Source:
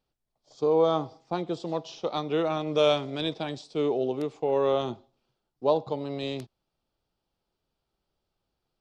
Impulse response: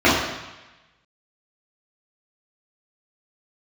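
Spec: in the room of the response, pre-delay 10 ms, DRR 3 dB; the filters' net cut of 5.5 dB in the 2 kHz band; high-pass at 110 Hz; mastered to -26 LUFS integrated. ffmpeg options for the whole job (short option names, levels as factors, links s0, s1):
-filter_complex "[0:a]highpass=110,equalizer=f=2000:t=o:g=-7.5,asplit=2[s0][s1];[1:a]atrim=start_sample=2205,adelay=10[s2];[s1][s2]afir=irnorm=-1:irlink=0,volume=0.0376[s3];[s0][s3]amix=inputs=2:normalize=0,volume=1.06"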